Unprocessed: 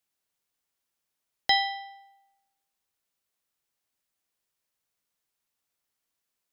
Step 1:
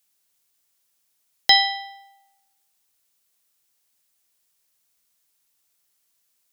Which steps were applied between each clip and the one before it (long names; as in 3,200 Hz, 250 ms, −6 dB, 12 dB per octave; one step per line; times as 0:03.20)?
high-shelf EQ 3,400 Hz +10.5 dB
level +4 dB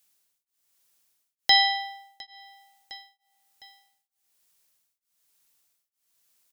repeating echo 708 ms, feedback 28%, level −16 dB
tremolo along a rectified sine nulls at 1.1 Hz
level +2 dB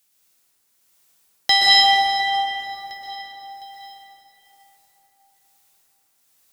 in parallel at −5.5 dB: asymmetric clip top −15.5 dBFS
on the sum: dense smooth reverb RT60 4.1 s, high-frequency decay 0.5×, pre-delay 110 ms, DRR −7.5 dB
level −1 dB